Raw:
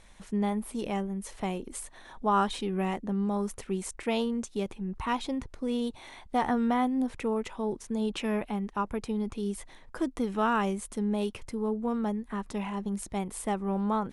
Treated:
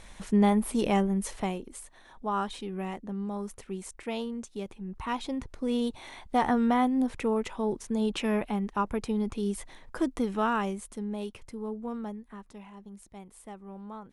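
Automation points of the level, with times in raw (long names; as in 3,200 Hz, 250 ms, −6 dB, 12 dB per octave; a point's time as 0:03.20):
0:01.23 +6.5 dB
0:01.74 −5 dB
0:04.70 −5 dB
0:05.77 +2 dB
0:10.12 +2 dB
0:11.08 −5.5 dB
0:11.96 −5.5 dB
0:12.65 −14 dB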